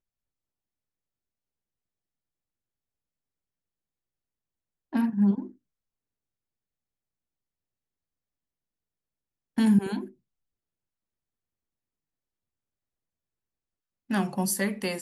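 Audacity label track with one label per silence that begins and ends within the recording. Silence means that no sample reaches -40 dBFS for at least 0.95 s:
5.500000	9.580000	silence
10.080000	14.100000	silence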